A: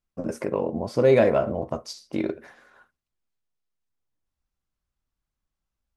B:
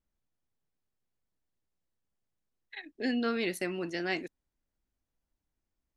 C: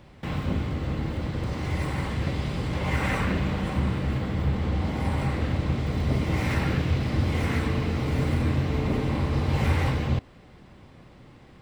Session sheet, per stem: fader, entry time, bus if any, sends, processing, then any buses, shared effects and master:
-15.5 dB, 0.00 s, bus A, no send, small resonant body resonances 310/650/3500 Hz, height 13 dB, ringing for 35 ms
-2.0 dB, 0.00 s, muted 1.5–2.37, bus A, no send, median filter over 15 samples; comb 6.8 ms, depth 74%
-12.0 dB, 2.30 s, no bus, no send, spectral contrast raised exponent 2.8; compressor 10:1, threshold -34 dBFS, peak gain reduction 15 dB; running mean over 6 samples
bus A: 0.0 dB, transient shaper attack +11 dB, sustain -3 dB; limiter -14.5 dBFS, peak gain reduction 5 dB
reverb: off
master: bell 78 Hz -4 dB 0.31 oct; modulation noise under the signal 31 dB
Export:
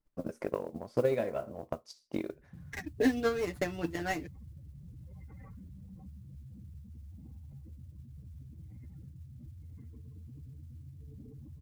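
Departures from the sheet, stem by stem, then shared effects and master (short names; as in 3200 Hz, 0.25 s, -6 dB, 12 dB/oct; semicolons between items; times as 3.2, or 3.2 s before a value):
stem A: missing small resonant body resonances 310/650/3500 Hz, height 13 dB, ringing for 35 ms; master: missing bell 78 Hz -4 dB 0.31 oct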